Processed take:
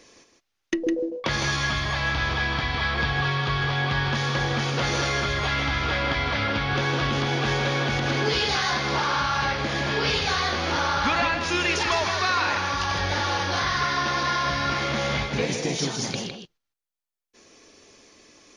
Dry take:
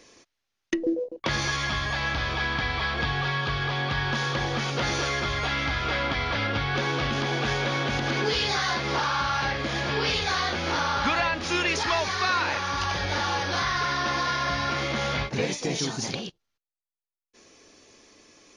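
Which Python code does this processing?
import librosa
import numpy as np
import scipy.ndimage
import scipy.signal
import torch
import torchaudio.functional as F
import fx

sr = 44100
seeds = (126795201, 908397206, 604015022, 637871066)

y = x + 10.0 ** (-6.5 / 20.0) * np.pad(x, (int(158 * sr / 1000.0), 0))[:len(x)]
y = y * librosa.db_to_amplitude(1.0)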